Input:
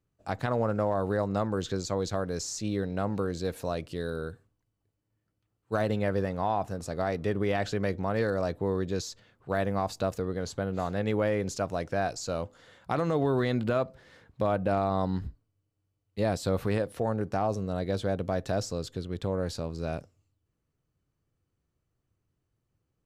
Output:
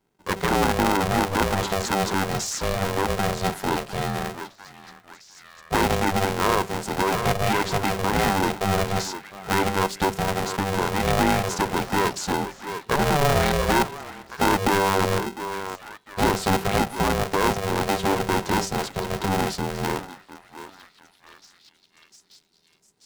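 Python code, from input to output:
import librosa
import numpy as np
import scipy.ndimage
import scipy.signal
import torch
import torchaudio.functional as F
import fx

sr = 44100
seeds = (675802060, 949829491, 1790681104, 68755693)

p1 = fx.hum_notches(x, sr, base_hz=50, count=9)
p2 = p1 + fx.echo_stepped(p1, sr, ms=702, hz=920.0, octaves=0.7, feedback_pct=70, wet_db=-7, dry=0)
p3 = p2 * np.sign(np.sin(2.0 * np.pi * 290.0 * np.arange(len(p2)) / sr))
y = p3 * librosa.db_to_amplitude(7.0)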